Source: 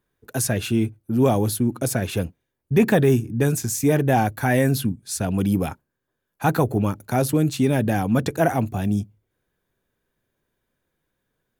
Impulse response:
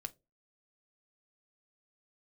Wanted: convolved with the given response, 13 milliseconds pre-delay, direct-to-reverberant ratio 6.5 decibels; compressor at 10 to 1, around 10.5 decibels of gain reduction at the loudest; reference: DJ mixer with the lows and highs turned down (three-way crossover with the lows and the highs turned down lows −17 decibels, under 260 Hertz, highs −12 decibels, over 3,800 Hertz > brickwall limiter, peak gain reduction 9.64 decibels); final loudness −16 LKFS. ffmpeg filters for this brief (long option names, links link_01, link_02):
-filter_complex "[0:a]acompressor=threshold=-23dB:ratio=10,asplit=2[link_01][link_02];[1:a]atrim=start_sample=2205,adelay=13[link_03];[link_02][link_03]afir=irnorm=-1:irlink=0,volume=-3.5dB[link_04];[link_01][link_04]amix=inputs=2:normalize=0,acrossover=split=260 3800:gain=0.141 1 0.251[link_05][link_06][link_07];[link_05][link_06][link_07]amix=inputs=3:normalize=0,volume=19dB,alimiter=limit=-5dB:level=0:latency=1"